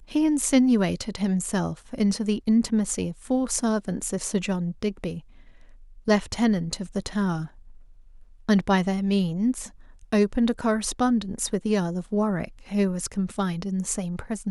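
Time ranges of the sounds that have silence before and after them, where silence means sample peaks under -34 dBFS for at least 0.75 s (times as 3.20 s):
6.08–7.46 s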